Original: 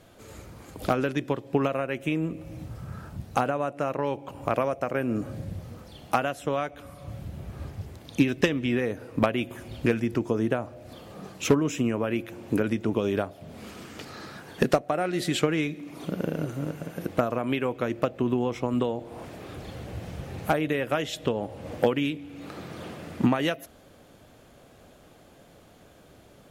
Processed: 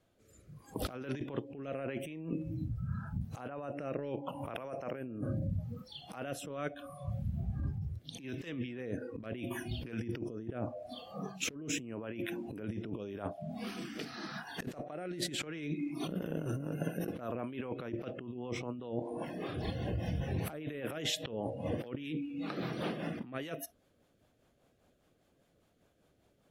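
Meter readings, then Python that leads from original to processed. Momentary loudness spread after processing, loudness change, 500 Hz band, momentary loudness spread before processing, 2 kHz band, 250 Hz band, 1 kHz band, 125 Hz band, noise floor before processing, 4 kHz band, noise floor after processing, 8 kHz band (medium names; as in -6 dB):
6 LU, -11.0 dB, -12.5 dB, 16 LU, -11.0 dB, -11.0 dB, -14.5 dB, -6.0 dB, -54 dBFS, -5.5 dB, -72 dBFS, -4.0 dB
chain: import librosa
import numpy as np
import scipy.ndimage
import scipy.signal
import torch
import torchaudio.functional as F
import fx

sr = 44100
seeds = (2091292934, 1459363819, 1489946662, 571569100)

y = fx.noise_reduce_blind(x, sr, reduce_db=20)
y = fx.rotary_switch(y, sr, hz=0.8, then_hz=5.0, switch_at_s=15.11)
y = fx.over_compress(y, sr, threshold_db=-37.0, ratio=-1.0)
y = F.gain(torch.from_numpy(y), -2.0).numpy()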